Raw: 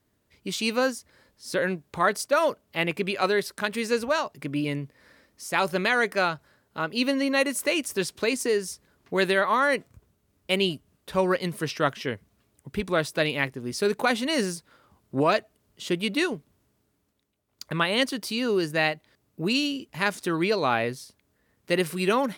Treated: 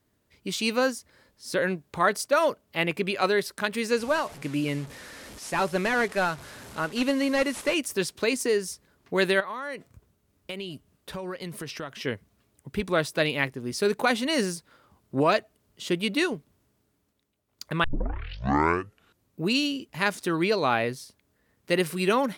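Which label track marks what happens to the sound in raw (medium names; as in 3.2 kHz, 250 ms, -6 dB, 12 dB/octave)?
3.990000	7.740000	one-bit delta coder 64 kbps, step -38 dBFS
9.400000	11.960000	compression, threshold -32 dBFS
17.840000	17.840000	tape start 1.58 s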